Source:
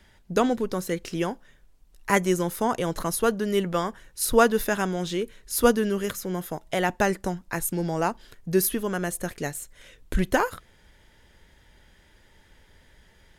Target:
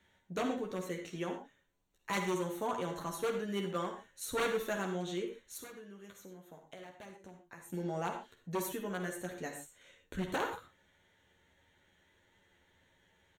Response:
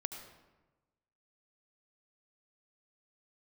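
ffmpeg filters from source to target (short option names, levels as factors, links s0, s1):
-filter_complex "[0:a]equalizer=f=11000:t=o:w=0.32:g=-14.5,aecho=1:1:11|25:0.668|0.188,aeval=exprs='0.188*(abs(mod(val(0)/0.188+3,4)-2)-1)':c=same,asuperstop=centerf=5000:order=4:qfactor=4.7,asettb=1/sr,asplit=3[s0][s1][s2];[s0]atrim=end=5.574[s3];[s1]atrim=start=5.57:end=7.7,asetpts=PTS-STARTPTS,afade=t=in:d=0.004:c=qsin,afade=t=out:st=2.126:d=0.004:c=qsin,acompressor=threshold=0.0158:ratio=10[s4];[s2]atrim=start=7.696[s5];[s3][s4]acrossfade=d=0.004:c1=hsin:c2=qsin[s6];[s6][s5]acrossfade=d=0.004:c1=qsin:c2=hsin,highpass=f=140:p=1[s7];[1:a]atrim=start_sample=2205,afade=t=out:st=0.26:d=0.01,atrim=end_sample=11907,asetrate=66150,aresample=44100[s8];[s7][s8]afir=irnorm=-1:irlink=0,volume=0.447"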